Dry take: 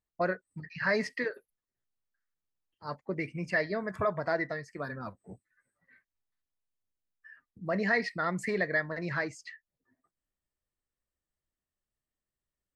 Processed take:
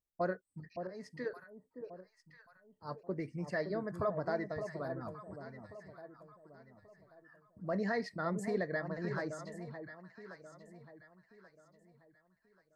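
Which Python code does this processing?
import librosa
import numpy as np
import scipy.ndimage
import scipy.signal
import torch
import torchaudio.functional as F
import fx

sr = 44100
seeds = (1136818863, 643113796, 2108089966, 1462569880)

y = fx.peak_eq(x, sr, hz=2500.0, db=-14.0, octaves=1.1)
y = fx.auto_swell(y, sr, attack_ms=480.0, at=(0.5, 1.23), fade=0.02)
y = fx.echo_alternate(y, sr, ms=567, hz=920.0, feedback_pct=57, wet_db=-7.0)
y = y * librosa.db_to_amplitude(-3.5)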